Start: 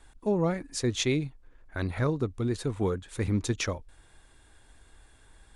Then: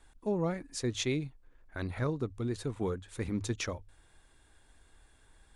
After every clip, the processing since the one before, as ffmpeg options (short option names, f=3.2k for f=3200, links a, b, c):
-af "bandreject=f=50:t=h:w=6,bandreject=f=100:t=h:w=6,volume=-5dB"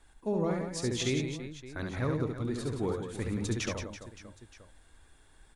-af "aecho=1:1:70|175|332.5|568.8|923.1:0.631|0.398|0.251|0.158|0.1"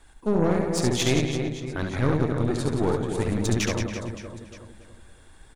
-filter_complex "[0:a]asplit=2[a][b];[b]adelay=280,lowpass=f=1.4k:p=1,volume=-6dB,asplit=2[c][d];[d]adelay=280,lowpass=f=1.4k:p=1,volume=0.44,asplit=2[e][f];[f]adelay=280,lowpass=f=1.4k:p=1,volume=0.44,asplit=2[g][h];[h]adelay=280,lowpass=f=1.4k:p=1,volume=0.44,asplit=2[i][j];[j]adelay=280,lowpass=f=1.4k:p=1,volume=0.44[k];[a][c][e][g][i][k]amix=inputs=6:normalize=0,aeval=exprs='0.119*(cos(1*acos(clip(val(0)/0.119,-1,1)))-cos(1*PI/2))+0.0211*(cos(4*acos(clip(val(0)/0.119,-1,1)))-cos(4*PI/2))':c=same,volume=7dB"